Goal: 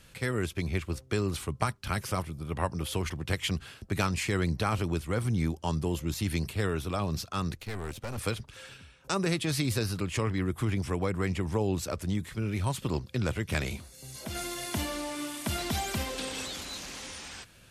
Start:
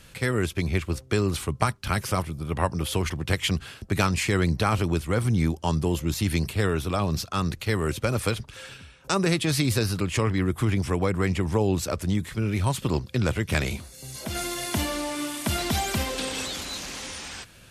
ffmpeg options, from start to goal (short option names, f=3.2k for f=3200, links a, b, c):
-filter_complex "[0:a]asettb=1/sr,asplit=3[a][b][c];[a]atrim=end=7.574[d];[b]atrim=start=7.57:end=8.18,asetpts=PTS-STARTPTS,afade=t=in:d=0.004:c=qsin,afade=t=out:st=0.606:d=0.004:c=qsin,aeval=exprs='(tanh(22.4*val(0)+0.75)-tanh(0.75))/22.4':c=same[e];[c]atrim=start=8.176[f];[d][e]acrossfade=d=0.004:c1=hsin:c2=qsin[g];[g][f]acrossfade=d=0.004:c1=qsin:c2=hsin,volume=-5.5dB"